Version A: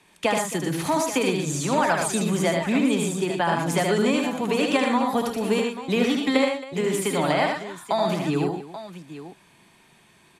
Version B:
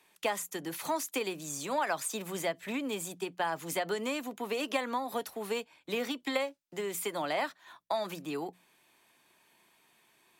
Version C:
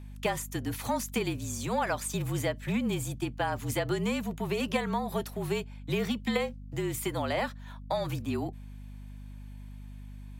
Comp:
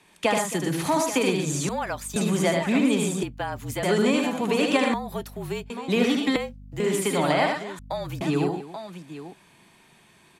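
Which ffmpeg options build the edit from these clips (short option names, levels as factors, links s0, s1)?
-filter_complex "[2:a]asplit=5[s0][s1][s2][s3][s4];[0:a]asplit=6[s5][s6][s7][s8][s9][s10];[s5]atrim=end=1.692[s11];[s0]atrim=start=1.688:end=2.162[s12];[s6]atrim=start=2.158:end=3.232[s13];[s1]atrim=start=3.228:end=3.832[s14];[s7]atrim=start=3.828:end=4.942[s15];[s2]atrim=start=4.938:end=5.702[s16];[s8]atrim=start=5.698:end=6.362[s17];[s3]atrim=start=6.358:end=6.802[s18];[s9]atrim=start=6.798:end=7.792[s19];[s4]atrim=start=7.788:end=8.212[s20];[s10]atrim=start=8.208[s21];[s11][s12]acrossfade=d=0.004:c1=hsin:c2=hsin[s22];[s22][s13]acrossfade=d=0.004:c1=hsin:c2=hsin[s23];[s23][s14]acrossfade=d=0.004:c1=hsin:c2=hsin[s24];[s24][s15]acrossfade=d=0.004:c1=hsin:c2=hsin[s25];[s25][s16]acrossfade=d=0.004:c1=hsin:c2=hsin[s26];[s26][s17]acrossfade=d=0.004:c1=hsin:c2=hsin[s27];[s27][s18]acrossfade=d=0.004:c1=hsin:c2=hsin[s28];[s28][s19]acrossfade=d=0.004:c1=hsin:c2=hsin[s29];[s29][s20]acrossfade=d=0.004:c1=hsin:c2=hsin[s30];[s30][s21]acrossfade=d=0.004:c1=hsin:c2=hsin"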